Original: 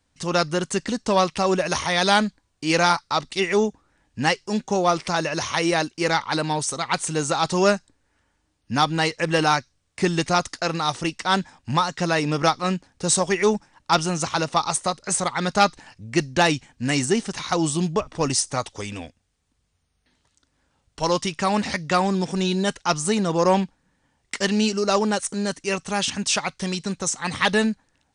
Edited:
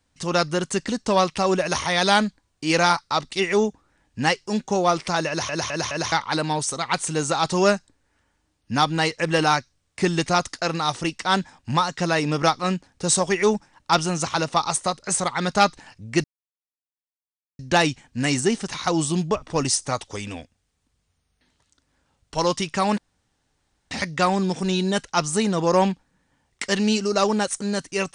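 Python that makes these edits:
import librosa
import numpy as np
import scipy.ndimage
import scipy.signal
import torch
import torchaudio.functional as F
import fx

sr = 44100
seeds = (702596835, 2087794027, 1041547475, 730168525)

y = fx.edit(x, sr, fx.stutter_over(start_s=5.28, slice_s=0.21, count=4),
    fx.insert_silence(at_s=16.24, length_s=1.35),
    fx.insert_room_tone(at_s=21.63, length_s=0.93), tone=tone)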